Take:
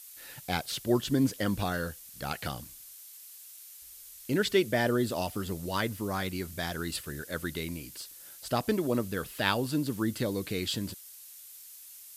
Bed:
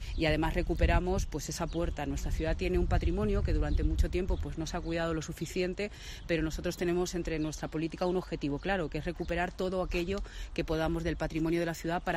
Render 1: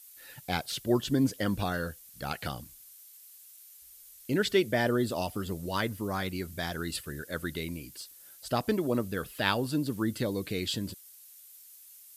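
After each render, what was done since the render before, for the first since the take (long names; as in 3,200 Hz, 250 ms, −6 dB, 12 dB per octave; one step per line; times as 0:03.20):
broadband denoise 6 dB, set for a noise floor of −50 dBFS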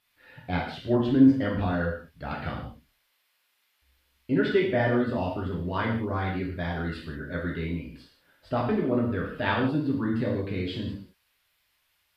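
high-frequency loss of the air 410 metres
reverb whose tail is shaped and stops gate 210 ms falling, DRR −3.5 dB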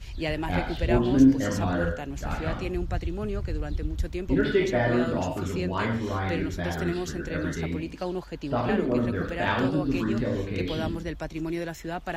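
mix in bed −0.5 dB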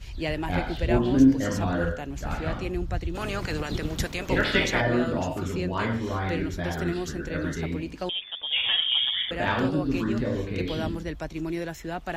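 0:03.14–0:04.80: ceiling on every frequency bin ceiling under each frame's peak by 22 dB
0:08.09–0:09.31: voice inversion scrambler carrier 3,500 Hz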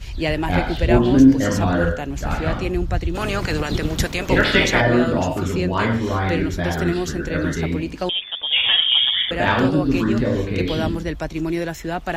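level +7.5 dB
brickwall limiter −3 dBFS, peak gain reduction 2.5 dB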